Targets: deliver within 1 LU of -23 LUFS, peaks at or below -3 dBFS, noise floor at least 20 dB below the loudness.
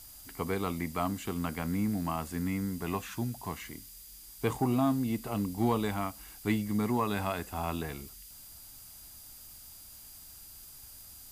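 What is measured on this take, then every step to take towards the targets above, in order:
steady tone 4.8 kHz; tone level -60 dBFS; noise floor -51 dBFS; noise floor target -53 dBFS; loudness -33.0 LUFS; peak level -14.5 dBFS; loudness target -23.0 LUFS
-> band-stop 4.8 kHz, Q 30; noise print and reduce 6 dB; trim +10 dB

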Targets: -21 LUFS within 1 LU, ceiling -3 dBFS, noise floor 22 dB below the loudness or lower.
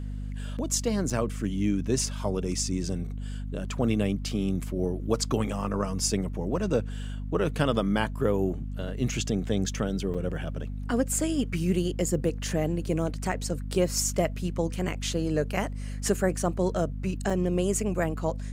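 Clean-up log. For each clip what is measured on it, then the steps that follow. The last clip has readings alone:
dropouts 4; longest dropout 5.4 ms; hum 50 Hz; highest harmonic 250 Hz; hum level -31 dBFS; loudness -28.5 LUFS; peak level -9.5 dBFS; loudness target -21.0 LUFS
-> interpolate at 1.10/10.14/13.32/17.30 s, 5.4 ms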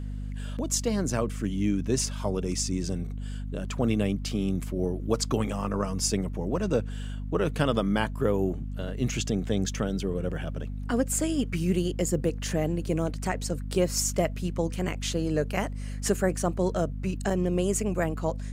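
dropouts 0; hum 50 Hz; highest harmonic 250 Hz; hum level -31 dBFS
-> de-hum 50 Hz, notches 5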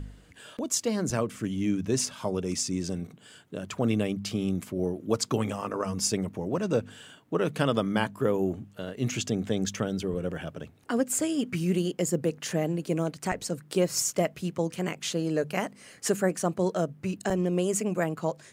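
hum not found; loudness -29.0 LUFS; peak level -10.0 dBFS; loudness target -21.0 LUFS
-> trim +8 dB; peak limiter -3 dBFS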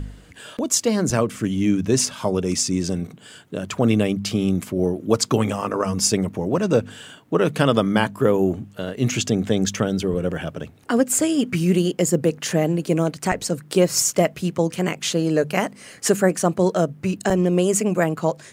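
loudness -21.0 LUFS; peak level -3.0 dBFS; noise floor -47 dBFS

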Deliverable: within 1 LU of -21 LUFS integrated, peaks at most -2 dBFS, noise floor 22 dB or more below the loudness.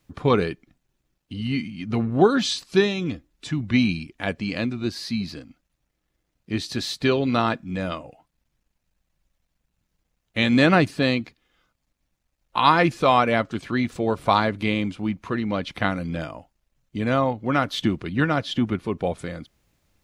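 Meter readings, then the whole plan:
loudness -23.5 LUFS; peak level -3.0 dBFS; loudness target -21.0 LUFS
-> trim +2.5 dB; peak limiter -2 dBFS

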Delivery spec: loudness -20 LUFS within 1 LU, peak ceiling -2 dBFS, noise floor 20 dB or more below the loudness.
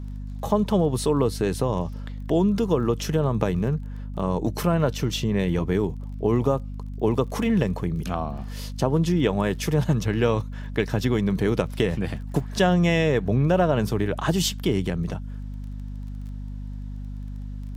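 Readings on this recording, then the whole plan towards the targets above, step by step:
tick rate 20 per s; hum 50 Hz; highest harmonic 250 Hz; hum level -31 dBFS; loudness -24.0 LUFS; peak level -4.5 dBFS; loudness target -20.0 LUFS
-> de-click; de-hum 50 Hz, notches 5; trim +4 dB; peak limiter -2 dBFS

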